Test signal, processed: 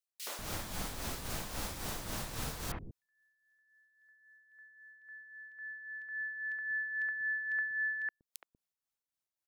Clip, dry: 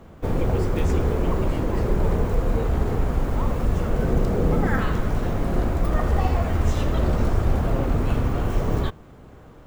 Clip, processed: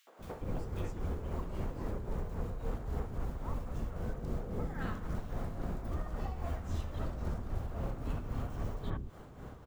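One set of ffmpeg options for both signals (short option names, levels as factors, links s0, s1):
-filter_complex "[0:a]acompressor=threshold=0.0282:ratio=8,acrossover=split=380|2400[s0][s1][s2];[s1]adelay=70[s3];[s0]adelay=190[s4];[s4][s3][s2]amix=inputs=3:normalize=0,tremolo=f=3.7:d=0.54"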